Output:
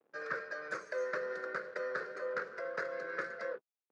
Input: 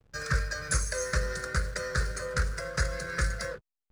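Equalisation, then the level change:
high-pass filter 310 Hz 24 dB per octave
head-to-tape spacing loss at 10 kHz 43 dB
+1.0 dB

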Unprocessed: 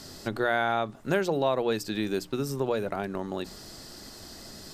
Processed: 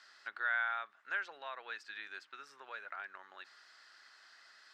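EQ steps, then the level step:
four-pole ladder band-pass 1,800 Hz, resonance 50%
+2.5 dB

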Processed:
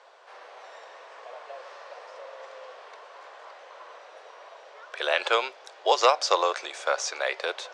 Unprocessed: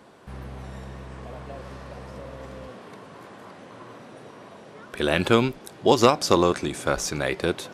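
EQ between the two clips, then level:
Butterworth high-pass 510 Hz 36 dB per octave
low-pass filter 6,700 Hz 24 dB per octave
0.0 dB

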